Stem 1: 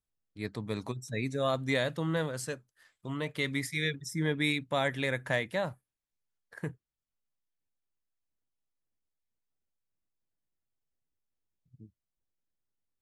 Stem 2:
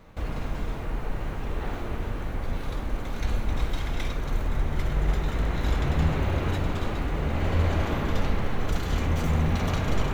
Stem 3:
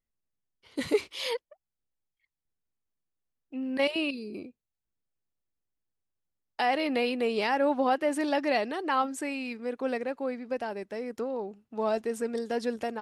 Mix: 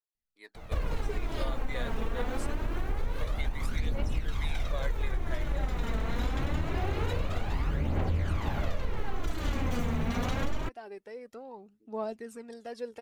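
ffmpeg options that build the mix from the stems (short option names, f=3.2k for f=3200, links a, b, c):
-filter_complex "[0:a]dynaudnorm=f=120:g=17:m=7dB,highpass=f=380:w=0.5412,highpass=f=380:w=1.3066,volume=-11dB[a];[1:a]adelay=550,volume=2.5dB[b];[2:a]adelay=150,volume=-10.5dB[c];[a][b][c]amix=inputs=3:normalize=0,aphaser=in_gain=1:out_gain=1:delay=4.6:decay=0.51:speed=0.25:type=triangular,acompressor=threshold=-26dB:ratio=6"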